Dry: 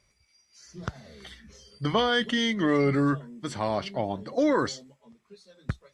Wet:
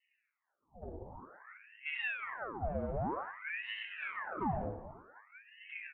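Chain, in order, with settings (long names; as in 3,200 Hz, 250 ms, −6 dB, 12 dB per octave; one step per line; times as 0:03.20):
loose part that buzzes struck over −38 dBFS, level −25 dBFS
high-pass filter 150 Hz 24 dB per octave
parametric band 240 Hz −3 dB
mains-hum notches 60/120/180/240/300 Hz
downward compressor 4 to 1, threshold −35 dBFS, peak gain reduction 13 dB
transient designer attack −10 dB, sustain +8 dB
Butterworth low-pass 580 Hz 72 dB per octave
soft clipping −36 dBFS, distortion −14 dB
echo with shifted repeats 91 ms, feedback 39%, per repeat +110 Hz, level −10 dB
feedback delay network reverb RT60 0.32 s, low-frequency decay 0.9×, high-frequency decay 0.45×, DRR −6 dB
ring modulator whose carrier an LFO sweeps 1,300 Hz, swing 85%, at 0.53 Hz
level −3.5 dB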